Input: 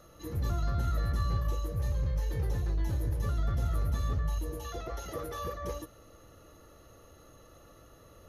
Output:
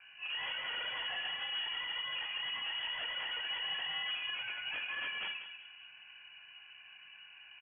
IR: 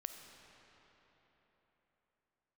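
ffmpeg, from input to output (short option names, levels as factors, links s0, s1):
-filter_complex "[0:a]bandreject=f=670:w=12,bandreject=f=130.1:t=h:w=4,bandreject=f=260.2:t=h:w=4,bandreject=f=390.3:t=h:w=4,afreqshift=370,acrossover=split=880[s0][s1];[s0]asoftclip=type=tanh:threshold=0.0299[s2];[s1]acrusher=bits=2:mode=log:mix=0:aa=0.000001[s3];[s2][s3]amix=inputs=2:normalize=0,flanger=delay=17.5:depth=6.8:speed=0.81,aresample=11025,aeval=exprs='0.0141*(abs(mod(val(0)/0.0141+3,4)-2)-1)':c=same,aresample=44100,asplit=2[s4][s5];[s5]adelay=204,lowpass=f=1900:p=1,volume=0.335,asplit=2[s6][s7];[s7]adelay=204,lowpass=f=1900:p=1,volume=0.33,asplit=2[s8][s9];[s9]adelay=204,lowpass=f=1900:p=1,volume=0.33,asplit=2[s10][s11];[s11]adelay=204,lowpass=f=1900:p=1,volume=0.33[s12];[s4][s6][s8][s10][s12]amix=inputs=5:normalize=0[s13];[1:a]atrim=start_sample=2205,atrim=end_sample=4410[s14];[s13][s14]afir=irnorm=-1:irlink=0,lowpass=f=2600:t=q:w=0.5098,lowpass=f=2600:t=q:w=0.6013,lowpass=f=2600:t=q:w=0.9,lowpass=f=2600:t=q:w=2.563,afreqshift=-3100,asetrate=48000,aresample=44100,volume=2.24"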